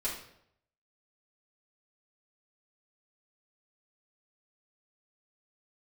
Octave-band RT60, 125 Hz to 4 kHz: 0.85, 0.75, 0.75, 0.70, 0.60, 0.55 s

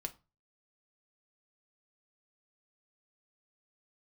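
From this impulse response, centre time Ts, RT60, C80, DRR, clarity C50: 4 ms, 0.30 s, 25.0 dB, 6.0 dB, 19.0 dB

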